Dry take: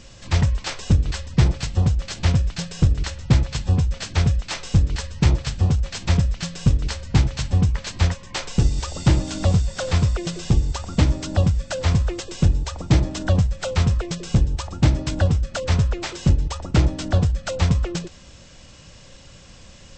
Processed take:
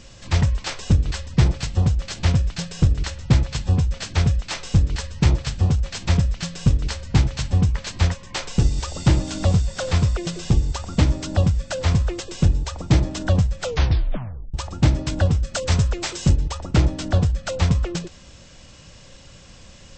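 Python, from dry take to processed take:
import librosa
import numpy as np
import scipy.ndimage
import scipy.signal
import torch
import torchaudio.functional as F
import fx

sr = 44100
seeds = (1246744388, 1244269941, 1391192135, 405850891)

y = fx.high_shelf(x, sr, hz=6700.0, db=12.0, at=(15.44, 16.36))
y = fx.edit(y, sr, fx.tape_stop(start_s=13.64, length_s=0.9), tone=tone)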